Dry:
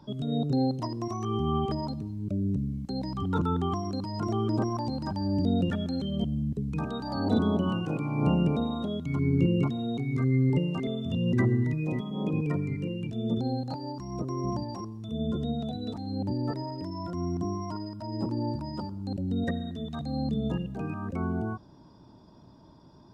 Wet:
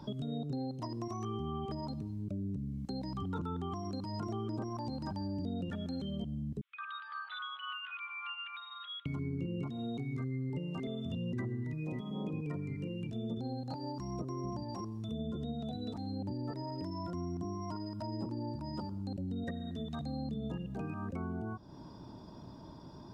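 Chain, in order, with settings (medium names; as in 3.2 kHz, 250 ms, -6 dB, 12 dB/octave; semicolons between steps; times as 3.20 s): 6.61–9.06 s: Chebyshev band-pass 1.2–3.5 kHz, order 4; compression 4:1, threshold -42 dBFS, peak gain reduction 19 dB; trim +4 dB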